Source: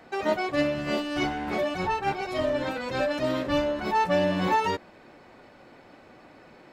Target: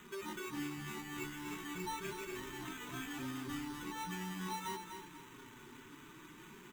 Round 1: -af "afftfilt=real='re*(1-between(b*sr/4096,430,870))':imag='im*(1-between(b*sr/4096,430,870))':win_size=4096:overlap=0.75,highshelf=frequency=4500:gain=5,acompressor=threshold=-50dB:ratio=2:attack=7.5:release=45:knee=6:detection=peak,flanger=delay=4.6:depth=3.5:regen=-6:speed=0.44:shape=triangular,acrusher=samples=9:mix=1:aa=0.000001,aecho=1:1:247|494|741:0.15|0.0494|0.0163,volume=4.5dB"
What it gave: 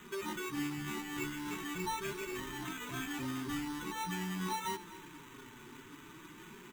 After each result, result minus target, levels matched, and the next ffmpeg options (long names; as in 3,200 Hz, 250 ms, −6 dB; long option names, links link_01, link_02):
echo-to-direct −9 dB; downward compressor: peak gain reduction −4.5 dB
-af "afftfilt=real='re*(1-between(b*sr/4096,430,870))':imag='im*(1-between(b*sr/4096,430,870))':win_size=4096:overlap=0.75,highshelf=frequency=4500:gain=5,acompressor=threshold=-50dB:ratio=2:attack=7.5:release=45:knee=6:detection=peak,flanger=delay=4.6:depth=3.5:regen=-6:speed=0.44:shape=triangular,acrusher=samples=9:mix=1:aa=0.000001,aecho=1:1:247|494|741|988:0.422|0.139|0.0459|0.0152,volume=4.5dB"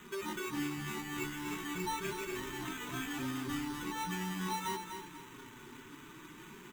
downward compressor: peak gain reduction −4.5 dB
-af "afftfilt=real='re*(1-between(b*sr/4096,430,870))':imag='im*(1-between(b*sr/4096,430,870))':win_size=4096:overlap=0.75,highshelf=frequency=4500:gain=5,acompressor=threshold=-59dB:ratio=2:attack=7.5:release=45:knee=6:detection=peak,flanger=delay=4.6:depth=3.5:regen=-6:speed=0.44:shape=triangular,acrusher=samples=9:mix=1:aa=0.000001,aecho=1:1:247|494|741|988:0.422|0.139|0.0459|0.0152,volume=4.5dB"